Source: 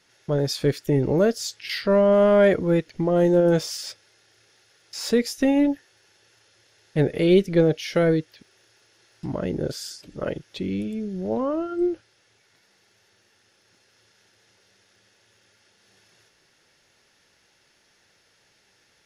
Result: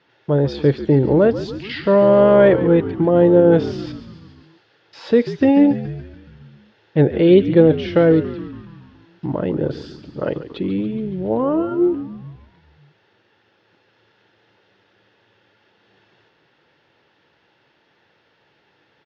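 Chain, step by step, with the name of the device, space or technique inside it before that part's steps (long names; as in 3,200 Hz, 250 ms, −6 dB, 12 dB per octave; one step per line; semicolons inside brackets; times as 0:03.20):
frequency-shifting delay pedal into a guitar cabinet (echo with shifted repeats 141 ms, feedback 63%, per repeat −71 Hz, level −13 dB; loudspeaker in its box 82–3,500 Hz, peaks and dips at 140 Hz +4 dB, 310 Hz +5 dB, 480 Hz +3 dB, 910 Hz +5 dB, 2,200 Hz −4 dB)
level +3.5 dB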